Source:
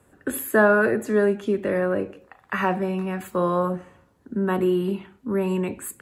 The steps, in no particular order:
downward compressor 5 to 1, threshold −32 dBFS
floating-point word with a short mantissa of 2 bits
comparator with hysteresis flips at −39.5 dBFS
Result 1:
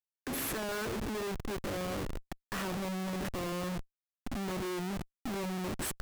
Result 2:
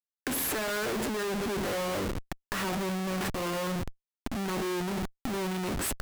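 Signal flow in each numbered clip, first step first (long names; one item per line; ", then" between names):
floating-point word with a short mantissa, then downward compressor, then comparator with hysteresis
floating-point word with a short mantissa, then comparator with hysteresis, then downward compressor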